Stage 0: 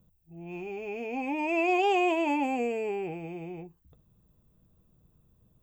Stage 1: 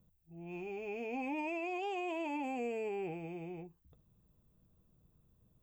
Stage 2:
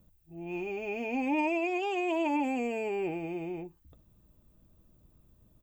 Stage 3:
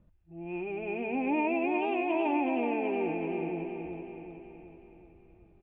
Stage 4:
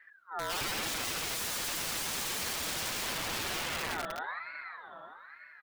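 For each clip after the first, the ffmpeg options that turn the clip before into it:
-af "alimiter=level_in=2.5dB:limit=-24dB:level=0:latency=1,volume=-2.5dB,volume=-5dB"
-af "aecho=1:1:3.3:0.38,volume=7dB"
-af "lowpass=f=2.7k:w=0.5412,lowpass=f=2.7k:w=1.3066,aecho=1:1:374|748|1122|1496|1870|2244|2618:0.562|0.298|0.158|0.0837|0.0444|0.0235|0.0125"
-af "aeval=exprs='(mod(56.2*val(0)+1,2)-1)/56.2':c=same,aecho=1:1:6.2:0.76,aeval=exprs='val(0)*sin(2*PI*1400*n/s+1400*0.3/1.1*sin(2*PI*1.1*n/s))':c=same,volume=5.5dB"

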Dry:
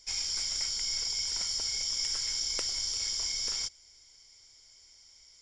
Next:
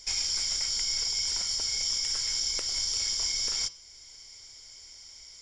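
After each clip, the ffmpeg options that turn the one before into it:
-af "acontrast=87,alimiter=limit=-21dB:level=0:latency=1:release=474,bandreject=f=165.5:t=h:w=4,bandreject=f=331:t=h:w=4,bandreject=f=496.5:t=h:w=4,bandreject=f=662:t=h:w=4,bandreject=f=827.5:t=h:w=4,bandreject=f=993:t=h:w=4,bandreject=f=1.1585k:t=h:w=4,bandreject=f=1.324k:t=h:w=4,bandreject=f=1.4895k:t=h:w=4,bandreject=f=1.655k:t=h:w=4,bandreject=f=1.8205k:t=h:w=4,bandreject=f=1.986k:t=h:w=4,bandreject=f=2.1515k:t=h:w=4,bandreject=f=2.317k:t=h:w=4,bandreject=f=2.4825k:t=h:w=4,bandreject=f=2.648k:t=h:w=4,bandreject=f=2.8135k:t=h:w=4,bandreject=f=2.979k:t=h:w=4,bandreject=f=3.1445k:t=h:w=4,bandreject=f=3.31k:t=h:w=4,bandreject=f=3.4755k:t=h:w=4,bandreject=f=3.641k:t=h:w=4,bandreject=f=3.8065k:t=h:w=4,bandreject=f=3.972k:t=h:w=4,bandreject=f=4.1375k:t=h:w=4,bandreject=f=4.303k:t=h:w=4,bandreject=f=4.4685k:t=h:w=4,bandreject=f=4.634k:t=h:w=4,bandreject=f=4.7995k:t=h:w=4,bandreject=f=4.965k:t=h:w=4,bandreject=f=5.1305k:t=h:w=4,bandreject=f=5.296k:t=h:w=4,bandreject=f=5.4615k:t=h:w=4,bandreject=f=5.627k:t=h:w=4,bandreject=f=5.7925k:t=h:w=4,bandreject=f=5.958k:t=h:w=4,volume=1.5dB"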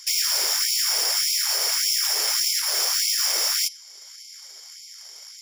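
-af "tiltshelf=f=970:g=-6.5,aeval=exprs='0.251*(cos(1*acos(clip(val(0)/0.251,-1,1)))-cos(1*PI/2))+0.0562*(cos(8*acos(clip(val(0)/0.251,-1,1)))-cos(8*PI/2))':c=same,afftfilt=real='re*gte(b*sr/1024,340*pow(2100/340,0.5+0.5*sin(2*PI*1.7*pts/sr)))':imag='im*gte(b*sr/1024,340*pow(2100/340,0.5+0.5*sin(2*PI*1.7*pts/sr)))':win_size=1024:overlap=0.75"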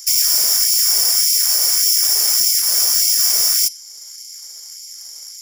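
-af "aexciter=amount=2.9:drive=8.3:freq=5.1k,volume=-2.5dB"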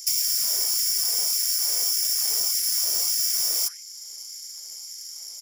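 -filter_complex "[0:a]acrossover=split=1500[a][b];[a]adelay=150[c];[c][b]amix=inputs=2:normalize=0,acrossover=split=470[d][e];[e]acompressor=threshold=-17dB:ratio=4[f];[d][f]amix=inputs=2:normalize=0,volume=-3.5dB"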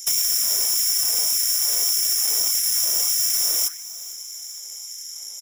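-filter_complex "[0:a]aeval=exprs='0.168*(abs(mod(val(0)/0.168+3,4)-2)-1)':c=same,asuperstop=centerf=4600:order=12:qfactor=4.3,asplit=5[a][b][c][d][e];[b]adelay=451,afreqshift=150,volume=-19dB[f];[c]adelay=902,afreqshift=300,volume=-25.6dB[g];[d]adelay=1353,afreqshift=450,volume=-32.1dB[h];[e]adelay=1804,afreqshift=600,volume=-38.7dB[i];[a][f][g][h][i]amix=inputs=5:normalize=0,volume=3.5dB"

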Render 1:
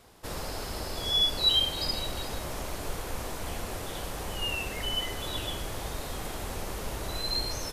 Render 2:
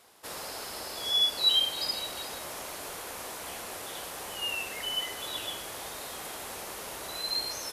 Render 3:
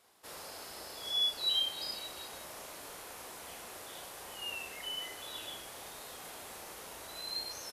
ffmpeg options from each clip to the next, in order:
-af "highpass=f=650:p=1,equalizer=f=11k:t=o:w=0.56:g=3.5"
-filter_complex "[0:a]asplit=2[a][b];[b]adelay=35,volume=-5.5dB[c];[a][c]amix=inputs=2:normalize=0,volume=-8.5dB"

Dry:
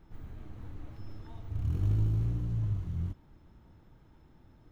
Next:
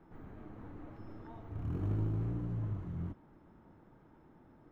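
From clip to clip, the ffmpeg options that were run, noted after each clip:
-filter_complex "[0:a]acrossover=split=160 2000:gain=0.2 1 0.158[a][b][c];[a][b][c]amix=inputs=3:normalize=0,volume=3.5dB"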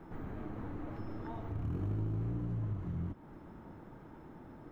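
-af "acompressor=threshold=-47dB:ratio=2.5,volume=9dB"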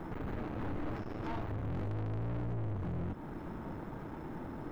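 -af "aeval=exprs='(tanh(224*val(0)+0.45)-tanh(0.45))/224':c=same,volume=11.5dB"

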